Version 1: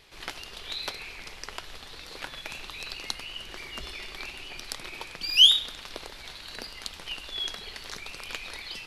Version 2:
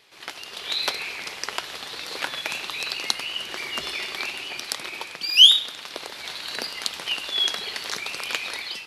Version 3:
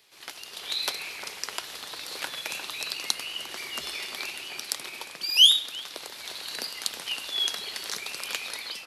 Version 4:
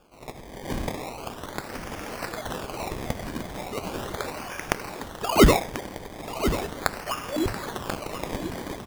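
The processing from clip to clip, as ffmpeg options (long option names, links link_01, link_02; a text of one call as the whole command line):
ffmpeg -i in.wav -af "highpass=110,lowshelf=frequency=210:gain=-9.5,dynaudnorm=framelen=210:gausssize=5:maxgain=10dB" out.wav
ffmpeg -i in.wav -filter_complex "[0:a]acrossover=split=120|2200[link_01][link_02][link_03];[link_02]aecho=1:1:352:0.447[link_04];[link_03]crystalizer=i=1.5:c=0[link_05];[link_01][link_04][link_05]amix=inputs=3:normalize=0,volume=-6.5dB" out.wav
ffmpeg -i in.wav -af "acrusher=samples=22:mix=1:aa=0.000001:lfo=1:lforange=22:lforate=0.38,aecho=1:1:1039:0.316,volume=2dB" out.wav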